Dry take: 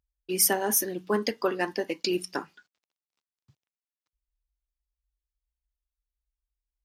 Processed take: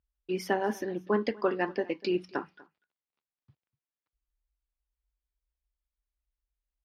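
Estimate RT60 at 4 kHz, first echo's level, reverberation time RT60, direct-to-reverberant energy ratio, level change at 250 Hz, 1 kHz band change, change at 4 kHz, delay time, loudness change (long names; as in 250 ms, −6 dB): no reverb audible, −23.0 dB, no reverb audible, no reverb audible, −0.5 dB, −1.5 dB, −10.5 dB, 244 ms, −4.5 dB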